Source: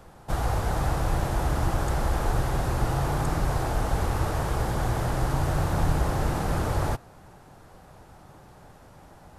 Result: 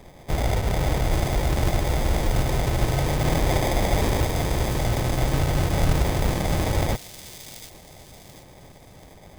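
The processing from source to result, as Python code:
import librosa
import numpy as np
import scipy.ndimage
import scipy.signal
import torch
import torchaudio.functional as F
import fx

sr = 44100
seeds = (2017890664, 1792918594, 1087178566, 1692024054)

y = fx.peak_eq(x, sr, hz=2300.0, db=7.5, octaves=2.8, at=(3.24, 4.22))
y = fx.sample_hold(y, sr, seeds[0], rate_hz=1400.0, jitter_pct=0)
y = fx.echo_wet_highpass(y, sr, ms=735, feedback_pct=35, hz=4200.0, wet_db=-3.0)
y = y * 10.0 ** (3.0 / 20.0)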